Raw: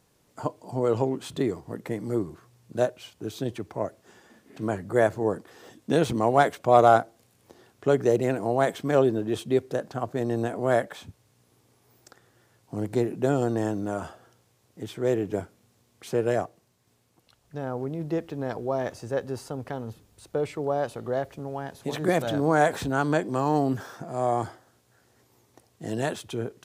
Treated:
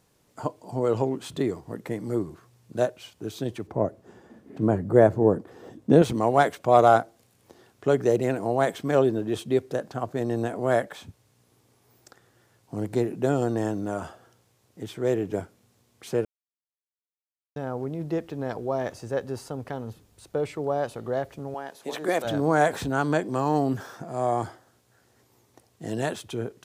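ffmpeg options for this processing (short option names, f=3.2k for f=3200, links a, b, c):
-filter_complex "[0:a]asettb=1/sr,asplit=3[a][b][c];[a]atrim=end=3.674[d];[b]atrim=start=3.67:end=6.02,asetpts=PTS-STARTPTS,afade=t=in:d=0.004:c=qsin,afade=t=out:st=2.346:d=0.004:c=qsin,tiltshelf=f=1.1k:g=8[e];[c]atrim=start=6.016[f];[d][e]acrossfade=d=0.004:c1=hsin:c2=qsin[g];[g][f]acrossfade=d=0.004:c1=qsin:c2=hsin,asettb=1/sr,asplit=3[h][i][j];[h]atrim=end=21.544[k];[i]atrim=start=21.54:end=22.25,asetpts=PTS-STARTPTS,afade=t=in:d=0.004:c=qsin,afade=t=out:st=0.706:d=0.004:c=qsin,highpass=340[l];[j]atrim=start=22.246[m];[k][l]acrossfade=d=0.004:c1=hsin:c2=qsin[n];[n][m]acrossfade=d=0.004:c1=qsin:c2=hsin,asplit=3[o][p][q];[o]atrim=end=16.25,asetpts=PTS-STARTPTS,afade=t=out:st=16.246:d=0.004:c=hsin[r];[p]atrim=start=16.25:end=17.56,asetpts=PTS-STARTPTS,volume=0[s];[q]atrim=start=17.56,asetpts=PTS-STARTPTS,afade=t=in:d=0.004:c=hsin[t];[r][s][t]concat=n=3:v=0:a=1"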